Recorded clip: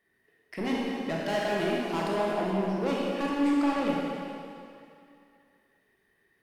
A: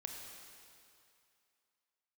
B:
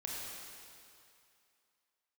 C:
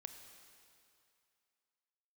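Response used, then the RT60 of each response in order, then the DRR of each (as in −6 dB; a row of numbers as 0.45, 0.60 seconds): B; 2.5, 2.5, 2.5 seconds; 1.5, −4.0, 6.5 decibels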